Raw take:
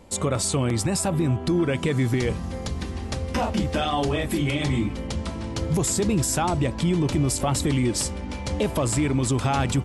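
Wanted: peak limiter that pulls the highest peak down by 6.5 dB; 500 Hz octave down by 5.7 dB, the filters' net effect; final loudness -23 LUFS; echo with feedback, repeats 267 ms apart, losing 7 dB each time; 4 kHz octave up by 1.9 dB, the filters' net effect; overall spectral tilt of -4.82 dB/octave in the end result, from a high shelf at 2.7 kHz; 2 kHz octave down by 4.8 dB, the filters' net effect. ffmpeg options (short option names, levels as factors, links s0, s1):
-af "equalizer=f=500:t=o:g=-7.5,equalizer=f=2000:t=o:g=-6.5,highshelf=f=2700:g=-3,equalizer=f=4000:t=o:g=7,alimiter=limit=0.0944:level=0:latency=1,aecho=1:1:267|534|801|1068|1335:0.447|0.201|0.0905|0.0407|0.0183,volume=1.78"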